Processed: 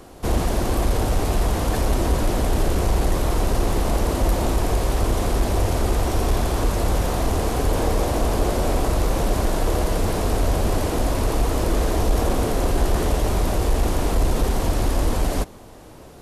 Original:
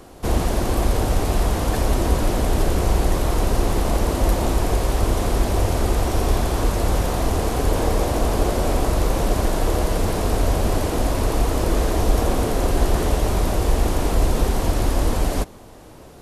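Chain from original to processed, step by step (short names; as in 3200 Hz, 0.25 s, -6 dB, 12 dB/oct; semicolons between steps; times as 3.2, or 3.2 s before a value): soft clip -9 dBFS, distortion -23 dB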